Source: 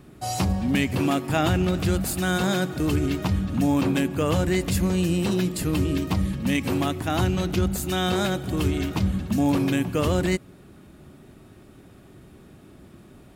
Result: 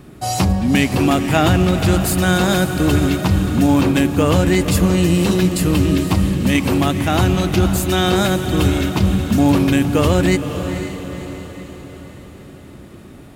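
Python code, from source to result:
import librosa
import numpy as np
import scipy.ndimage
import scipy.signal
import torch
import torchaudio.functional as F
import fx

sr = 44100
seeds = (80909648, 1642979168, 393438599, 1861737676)

y = fx.echo_diffused(x, sr, ms=514, feedback_pct=52, wet_db=-9.0)
y = y * librosa.db_to_amplitude(7.5)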